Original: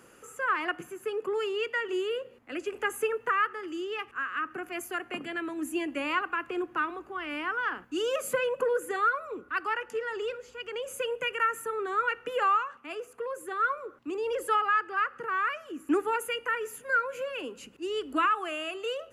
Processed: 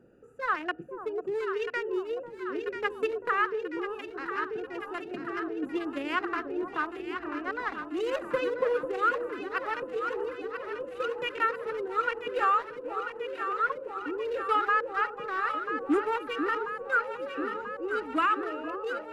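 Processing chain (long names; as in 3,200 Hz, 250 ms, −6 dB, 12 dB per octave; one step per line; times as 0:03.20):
adaptive Wiener filter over 41 samples
delay that swaps between a low-pass and a high-pass 494 ms, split 940 Hz, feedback 84%, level −6.5 dB
level +1 dB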